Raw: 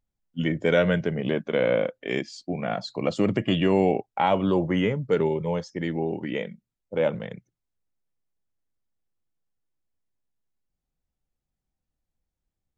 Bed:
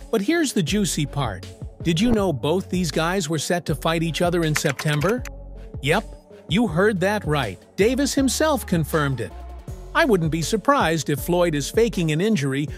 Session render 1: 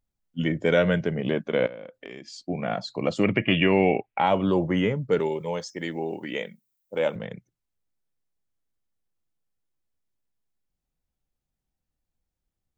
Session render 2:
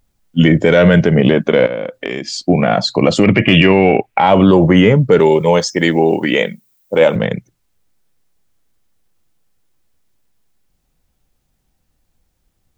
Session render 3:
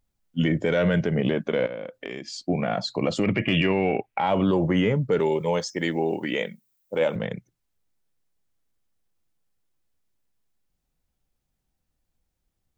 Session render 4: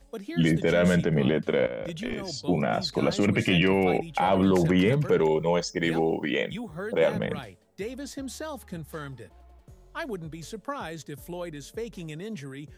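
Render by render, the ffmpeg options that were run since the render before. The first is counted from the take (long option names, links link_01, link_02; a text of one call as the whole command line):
ffmpeg -i in.wav -filter_complex "[0:a]asettb=1/sr,asplit=3[link_01][link_02][link_03];[link_01]atrim=end=1.664[link_04];[link_02]atrim=start=1.66:end=2.4,asetpts=PTS-STARTPTS,afade=type=in:duration=0.004:curve=qsin,afade=type=out:start_time=0.736:duration=0.004:curve=qsin,acompressor=threshold=-35dB:ratio=12:attack=3.2:release=140:knee=1:detection=peak[link_05];[link_03]atrim=start=2.396[link_06];[link_04][link_05]acrossfade=duration=0.004:curve1=hsin:curve2=qsin[link_07];[link_07][link_06]acrossfade=duration=0.004:curve1=qsin:curve2=hsin,asettb=1/sr,asplit=3[link_08][link_09][link_10];[link_08]atrim=end=3.234[link_11];[link_09]atrim=start=3.23:end=4.2,asetpts=PTS-STARTPTS,afade=type=in:duration=0.004:curve=qsin,afade=type=out:start_time=0.966:duration=0.004:curve=qsin,lowpass=frequency=2400:width_type=q:width=4.1[link_12];[link_10]atrim=start=4.196[link_13];[link_11][link_12]acrossfade=duration=0.004:curve1=hsin:curve2=qsin[link_14];[link_14][link_13]acrossfade=duration=0.004:curve1=qsin:curve2=hsin,asettb=1/sr,asplit=3[link_15][link_16][link_17];[link_15]atrim=end=5.194[link_18];[link_16]atrim=start=5.19:end=7.16,asetpts=PTS-STARTPTS,afade=type=in:duration=0.004:curve=qsin,afade=type=out:start_time=1.966:duration=0.004:curve=qsin,aemphasis=mode=production:type=bsi[link_19];[link_17]atrim=start=7.156[link_20];[link_18][link_19]acrossfade=duration=0.004:curve1=hsin:curve2=qsin[link_21];[link_21][link_20]acrossfade=duration=0.004:curve1=qsin:curve2=hsin" out.wav
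ffmpeg -i in.wav -af "acontrast=33,alimiter=level_in=13dB:limit=-1dB:release=50:level=0:latency=1" out.wav
ffmpeg -i in.wav -af "volume=-12.5dB" out.wav
ffmpeg -i in.wav -i bed.wav -filter_complex "[1:a]volume=-16.5dB[link_01];[0:a][link_01]amix=inputs=2:normalize=0" out.wav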